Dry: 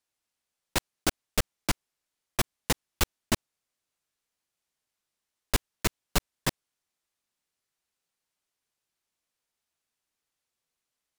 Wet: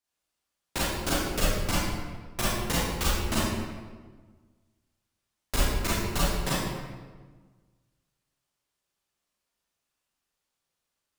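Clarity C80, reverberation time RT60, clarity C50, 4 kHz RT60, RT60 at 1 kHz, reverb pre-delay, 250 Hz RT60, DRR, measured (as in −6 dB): 0.0 dB, 1.4 s, −3.5 dB, 0.95 s, 1.3 s, 28 ms, 1.8 s, −9.0 dB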